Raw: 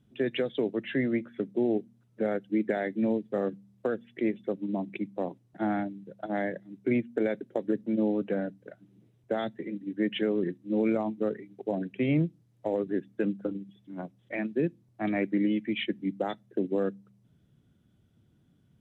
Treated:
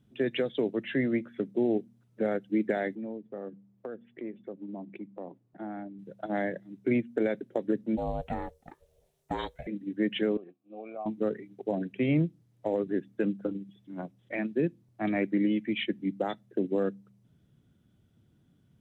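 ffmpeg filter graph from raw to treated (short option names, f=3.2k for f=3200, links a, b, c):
-filter_complex "[0:a]asettb=1/sr,asplit=3[a][b][c];[a]atrim=end=2.954[d];[b]atrim=start=2.95:end=5.99,asetpts=PTS-STARTPTS,afade=t=in:d=0.004:c=qsin,afade=t=out:st=3.036:d=0.004:c=qsin,lowpass=f=1.1k:p=1,equalizer=f=63:t=o:w=2.2:g=-9.5,acompressor=threshold=-41dB:ratio=2:attack=3.2:release=140:knee=1:detection=peak[e];[c]atrim=start=5.986[f];[d][e]acrossfade=d=0.004:c1=hsin:c2=qsin[g];[g][f]acrossfade=d=0.004:c1=qsin:c2=hsin,asettb=1/sr,asplit=3[h][i][j];[h]atrim=end=7.974[k];[i]atrim=start=7.97:end=9.67,asetpts=PTS-STARTPTS,afade=t=in:d=0.004:c=qsin,afade=t=out:st=1.696:d=0.004:c=qsin,highpass=160,bass=f=250:g=-5,treble=f=4k:g=12,aeval=exprs='val(0)*sin(2*PI*270*n/s)':c=same[l];[j]atrim=start=9.666[m];[k][l]acrossfade=d=0.004:c1=hsin:c2=qsin[n];[n][m]acrossfade=d=0.004:c1=qsin:c2=hsin,asettb=1/sr,asplit=3[o][p][q];[o]atrim=end=10.374[r];[p]atrim=start=10.37:end=11.06,asetpts=PTS-STARTPTS,afade=t=in:d=0.004:c=qsin,afade=t=out:st=0.686:d=0.004:c=qsin,asplit=3[s][t][u];[s]bandpass=f=730:t=q:w=8,volume=0dB[v];[t]bandpass=f=1.09k:t=q:w=8,volume=-6dB[w];[u]bandpass=f=2.44k:t=q:w=8,volume=-9dB[x];[v][w][x]amix=inputs=3:normalize=0,equalizer=f=120:t=o:w=1.2:g=5[y];[q]atrim=start=11.056[z];[r][y]acrossfade=d=0.004:c1=hsin:c2=qsin[aa];[aa][z]acrossfade=d=0.004:c1=qsin:c2=hsin"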